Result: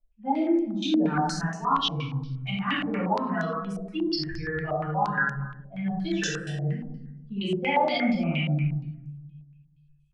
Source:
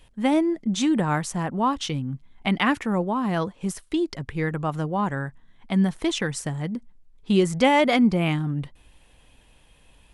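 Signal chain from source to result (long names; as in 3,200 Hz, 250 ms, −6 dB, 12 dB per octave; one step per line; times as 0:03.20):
spectral dynamics exaggerated over time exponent 2
spectral tilt +1.5 dB per octave
reversed playback
downward compressor 6 to 1, threshold −34 dBFS, peak gain reduction 16 dB
reversed playback
rectangular room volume 470 cubic metres, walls mixed, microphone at 8 metres
low-pass on a step sequencer 8.5 Hz 630–6,400 Hz
level −8.5 dB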